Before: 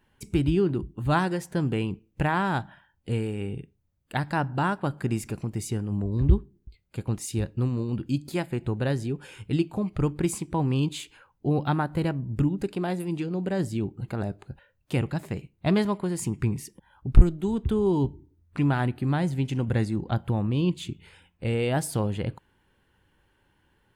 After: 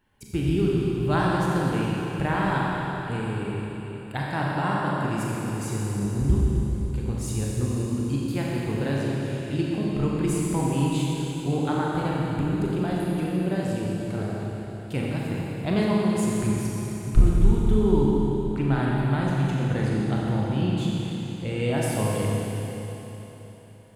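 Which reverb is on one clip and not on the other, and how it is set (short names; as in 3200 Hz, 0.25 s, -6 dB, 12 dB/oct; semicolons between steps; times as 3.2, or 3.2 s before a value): Schroeder reverb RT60 3.8 s, combs from 29 ms, DRR -4.5 dB; gain -3.5 dB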